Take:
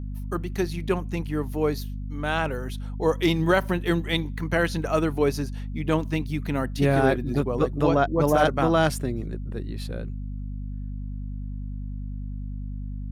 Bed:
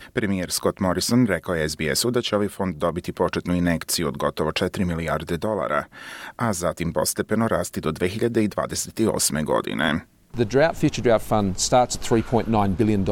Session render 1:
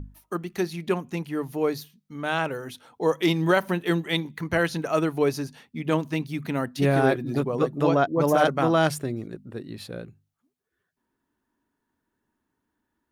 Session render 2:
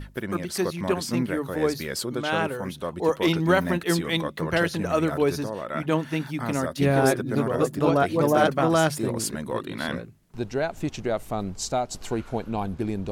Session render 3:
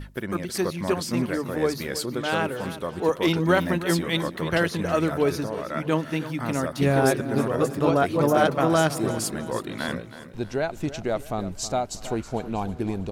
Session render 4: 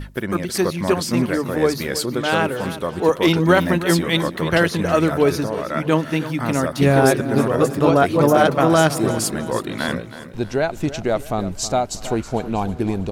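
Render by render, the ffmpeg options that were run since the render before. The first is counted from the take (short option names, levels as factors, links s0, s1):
-af "bandreject=f=50:t=h:w=6,bandreject=f=100:t=h:w=6,bandreject=f=150:t=h:w=6,bandreject=f=200:t=h:w=6,bandreject=f=250:t=h:w=6"
-filter_complex "[1:a]volume=0.376[s0];[0:a][s0]amix=inputs=2:normalize=0"
-af "aecho=1:1:321|642|963|1284:0.2|0.0838|0.0352|0.0148"
-af "volume=2,alimiter=limit=0.708:level=0:latency=1"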